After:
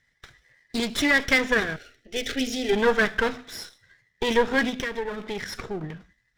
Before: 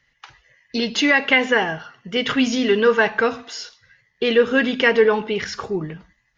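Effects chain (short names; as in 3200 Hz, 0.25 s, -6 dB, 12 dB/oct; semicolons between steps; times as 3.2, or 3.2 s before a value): minimum comb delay 0.55 ms; 1.76–2.73 fixed phaser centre 420 Hz, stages 4; 4.69–5.84 compressor 6:1, threshold -24 dBFS, peak gain reduction 12 dB; gain -3.5 dB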